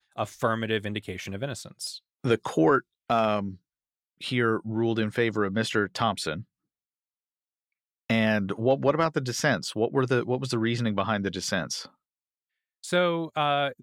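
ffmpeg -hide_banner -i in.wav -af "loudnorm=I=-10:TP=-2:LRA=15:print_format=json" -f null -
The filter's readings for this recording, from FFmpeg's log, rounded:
"input_i" : "-27.0",
"input_tp" : "-9.9",
"input_lra" : "1.9",
"input_thresh" : "-37.3",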